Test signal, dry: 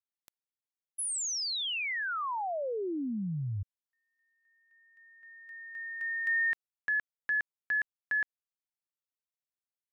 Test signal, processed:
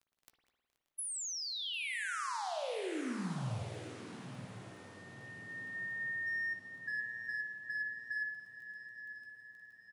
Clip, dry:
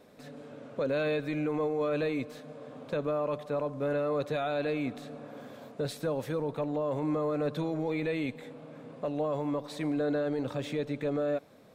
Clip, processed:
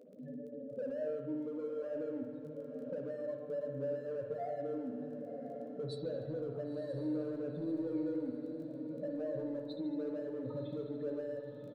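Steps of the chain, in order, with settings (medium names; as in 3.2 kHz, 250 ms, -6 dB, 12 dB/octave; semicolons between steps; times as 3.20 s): spectral contrast enhancement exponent 3.3; in parallel at -6 dB: hard clipper -32 dBFS; on the sum: de-hum 219.4 Hz, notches 27; crackle 14 per s -50 dBFS; compression 3:1, threshold -38 dBFS; doubling 16 ms -10 dB; on a send: echo that smears into a reverb 1018 ms, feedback 48%, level -10 dB; on the sum: spring tank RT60 1.5 s, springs 52 ms, chirp 25 ms, DRR 3 dB; trim -3.5 dB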